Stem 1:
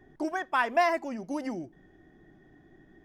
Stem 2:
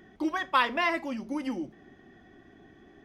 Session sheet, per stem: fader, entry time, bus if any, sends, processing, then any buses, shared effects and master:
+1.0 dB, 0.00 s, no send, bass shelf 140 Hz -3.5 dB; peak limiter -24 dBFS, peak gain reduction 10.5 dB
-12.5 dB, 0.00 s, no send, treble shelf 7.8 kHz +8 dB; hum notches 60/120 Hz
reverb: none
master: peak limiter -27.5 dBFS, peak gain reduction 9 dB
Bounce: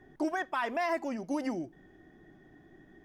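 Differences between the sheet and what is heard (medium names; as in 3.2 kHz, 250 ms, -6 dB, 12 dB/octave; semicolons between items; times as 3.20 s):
stem 2 -12.5 dB -> -19.5 dB; master: missing peak limiter -27.5 dBFS, peak gain reduction 9 dB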